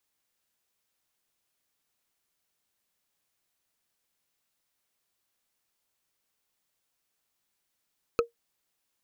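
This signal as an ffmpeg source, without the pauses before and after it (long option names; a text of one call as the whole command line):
ffmpeg -f lavfi -i "aevalsrc='0.158*pow(10,-3*t/0.13)*sin(2*PI*468*t)+0.1*pow(10,-3*t/0.038)*sin(2*PI*1290.3*t)+0.0631*pow(10,-3*t/0.017)*sin(2*PI*2529.1*t)+0.0398*pow(10,-3*t/0.009)*sin(2*PI*4180.6*t)+0.0251*pow(10,-3*t/0.006)*sin(2*PI*6243.1*t)':duration=0.45:sample_rate=44100" out.wav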